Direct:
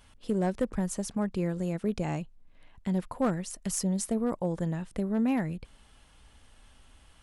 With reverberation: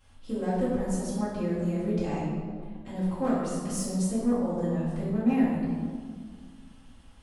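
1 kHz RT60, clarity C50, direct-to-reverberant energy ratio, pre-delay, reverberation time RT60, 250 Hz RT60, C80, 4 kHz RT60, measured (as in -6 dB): 1.7 s, -1.0 dB, -11.5 dB, 4 ms, 1.8 s, 2.5 s, 1.0 dB, 1.1 s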